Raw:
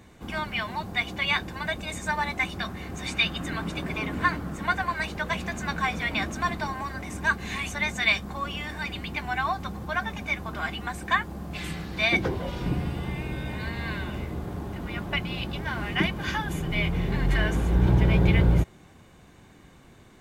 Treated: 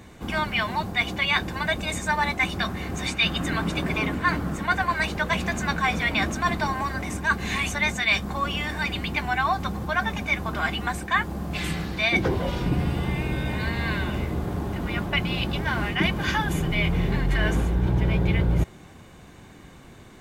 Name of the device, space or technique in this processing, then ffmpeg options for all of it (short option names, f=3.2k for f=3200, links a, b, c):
compression on the reversed sound: -af "areverse,acompressor=threshold=-24dB:ratio=5,areverse,volume=5.5dB"